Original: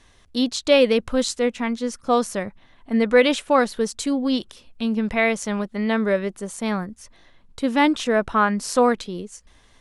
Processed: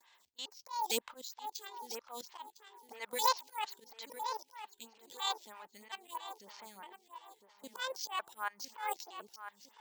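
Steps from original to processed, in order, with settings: pitch shift switched off and on +9.5 st, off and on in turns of 455 ms; gate with hold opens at -50 dBFS; peaking EQ 910 Hz +13.5 dB 0.29 oct; level held to a coarse grid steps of 20 dB; slow attack 302 ms; differentiator; filtered feedback delay 1006 ms, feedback 40%, low-pass 2.4 kHz, level -9 dB; careless resampling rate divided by 4×, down filtered, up hold; lamp-driven phase shifter 3.1 Hz; trim +11.5 dB

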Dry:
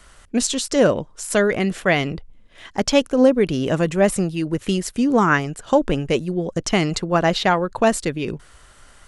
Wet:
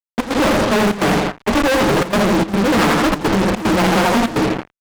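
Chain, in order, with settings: comb filter that takes the minimum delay 9.9 ms; time stretch by phase-locked vocoder 0.53×; low-pass 1.2 kHz 12 dB/octave; doubling 23 ms -12 dB; feedback delay 83 ms, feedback 47%, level -5 dB; frequency shift +15 Hz; fuzz box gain 37 dB, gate -37 dBFS; peaking EQ 490 Hz -4 dB 0.83 oct; trance gate "xx.xxxxxx.x" 148 bpm -12 dB; bass shelf 69 Hz -7 dB; loudspeaker Doppler distortion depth 0.61 ms; trim +2 dB

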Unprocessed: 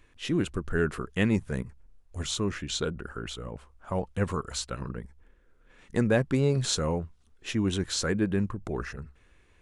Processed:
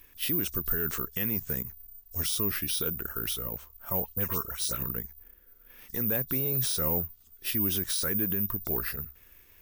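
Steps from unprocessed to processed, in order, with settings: knee-point frequency compression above 3.4 kHz 1.5:1; treble shelf 3.1 kHz +11.5 dB; peak limiter -23 dBFS, peak gain reduction 12.5 dB; 4.00–4.83 s: phase dispersion highs, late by 81 ms, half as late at 2.8 kHz; careless resampling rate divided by 3×, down none, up zero stuff; trim -2 dB

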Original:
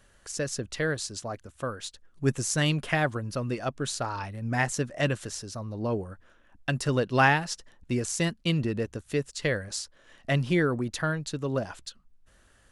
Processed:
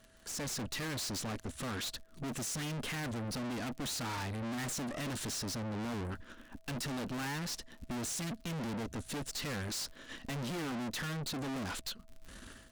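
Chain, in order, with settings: fifteen-band graphic EQ 250 Hz +10 dB, 630 Hz -6 dB, 4 kHz +4 dB; level rider gain up to 15 dB; crackle 83 per s -43 dBFS; valve stage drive 37 dB, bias 0.75; whistle 650 Hz -68 dBFS

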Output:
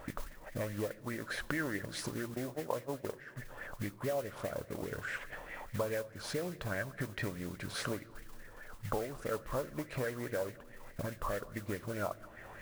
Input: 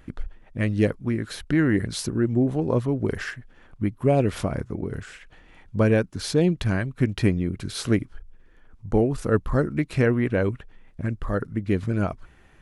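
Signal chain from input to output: 2.34–3.36 s: gate -23 dBFS, range -18 dB; peaking EQ 570 Hz +14.5 dB 0.76 oct; compression 6:1, threshold -36 dBFS, peak gain reduction 28 dB; modulation noise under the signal 14 dB; simulated room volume 1800 m³, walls mixed, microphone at 0.34 m; sweeping bell 4.8 Hz 950–2000 Hz +16 dB; trim -2.5 dB

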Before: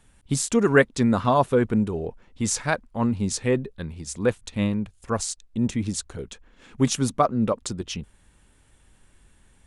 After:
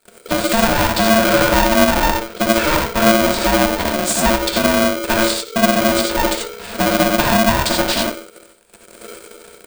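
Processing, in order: saturation -16.5 dBFS, distortion -12 dB; low-pass that closes with the level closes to 1.4 kHz, closed at -21.5 dBFS; flange 1.1 Hz, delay 3.9 ms, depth 6.1 ms, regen +76%; feedback delay 61 ms, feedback 42%, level -19 dB; waveshaping leveller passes 5; rippled EQ curve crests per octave 0.98, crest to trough 17 dB; compression, threshold -17 dBFS, peak gain reduction 7 dB; hum notches 60/120 Hz; gated-style reverb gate 110 ms rising, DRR 0.5 dB; polarity switched at an audio rate 450 Hz; trim +3.5 dB

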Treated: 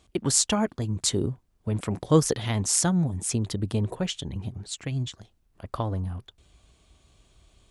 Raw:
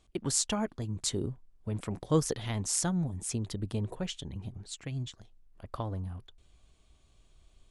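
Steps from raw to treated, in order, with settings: high-pass 47 Hz; trim +7 dB

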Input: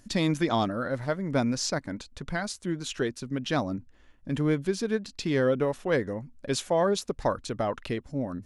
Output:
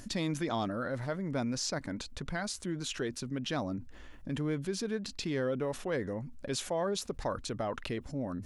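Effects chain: level flattener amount 50%; trim -9 dB

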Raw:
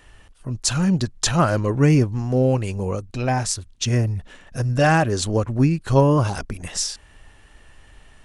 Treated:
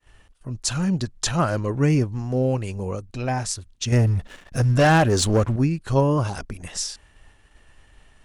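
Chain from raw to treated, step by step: expander -45 dBFS; 3.92–5.56 s: waveshaping leveller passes 2; trim -3.5 dB

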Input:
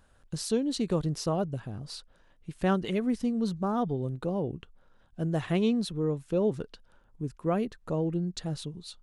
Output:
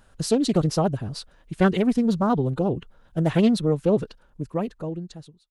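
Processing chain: fade out at the end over 2.83 s; time stretch by phase-locked vocoder 0.61×; loudspeaker Doppler distortion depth 0.22 ms; trim +8 dB

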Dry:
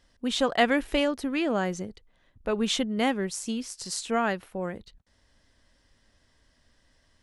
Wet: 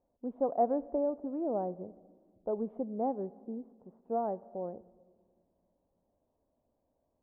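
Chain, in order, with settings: steep low-pass 780 Hz 36 dB/octave; tilt EQ +4.5 dB/octave; on a send: reverberation RT60 1.6 s, pre-delay 46 ms, DRR 21 dB

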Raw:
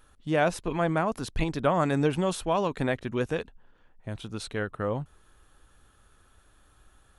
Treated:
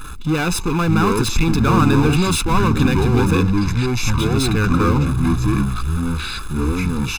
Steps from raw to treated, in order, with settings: power-law waveshaper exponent 0.5; ever faster or slower copies 490 ms, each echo -7 st, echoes 2; comb 0.8 ms, depth 96%

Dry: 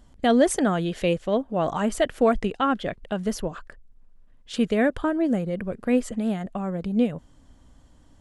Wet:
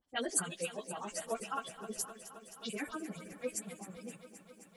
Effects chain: delay that grows with frequency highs late, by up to 119 ms; RIAA curve recording; de-hum 65 Hz, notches 39; spectral noise reduction 10 dB; harmonic tremolo 8.2 Hz, depth 100%, crossover 830 Hz; spectral selection erased 1.44–1.64 s, 1–5.2 kHz; plain phase-vocoder stretch 0.58×; bit-crushed delay 262 ms, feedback 80%, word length 11-bit, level -14 dB; trim -2.5 dB

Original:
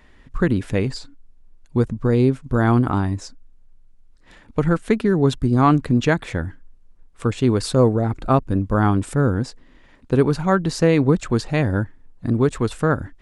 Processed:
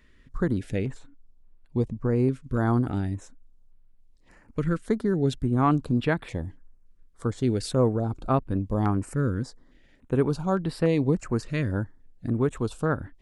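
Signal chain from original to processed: 0.76–2.16 s: treble shelf 7.9 kHz -9.5 dB; step-sequenced notch 3.5 Hz 790–6400 Hz; trim -6.5 dB

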